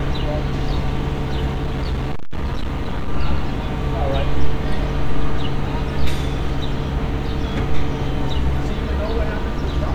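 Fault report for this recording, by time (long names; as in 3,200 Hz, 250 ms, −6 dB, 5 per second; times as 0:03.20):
0:01.53–0:03.09: clipping −17.5 dBFS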